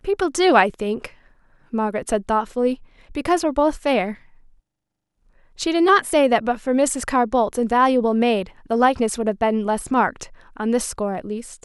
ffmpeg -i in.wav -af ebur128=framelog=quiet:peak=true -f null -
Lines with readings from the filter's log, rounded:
Integrated loudness:
  I:         -20.2 LUFS
  Threshold: -30.9 LUFS
Loudness range:
  LRA:         4.6 LU
  Threshold: -40.9 LUFS
  LRA low:   -23.4 LUFS
  LRA high:  -18.7 LUFS
True peak:
  Peak:       -1.6 dBFS